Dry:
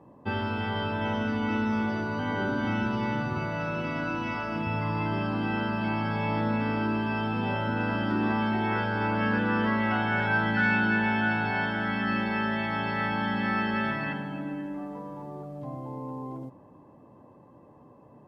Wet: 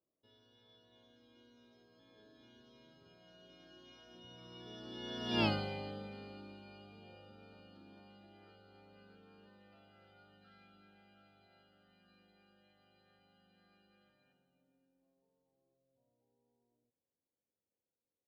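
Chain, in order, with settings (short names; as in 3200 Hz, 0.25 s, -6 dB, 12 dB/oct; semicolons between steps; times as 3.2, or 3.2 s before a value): Doppler pass-by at 5.44, 31 m/s, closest 1.8 m; graphic EQ 125/250/500/1000/2000/4000 Hz -10/-6/+3/-12/-10/+11 dB; gain +6.5 dB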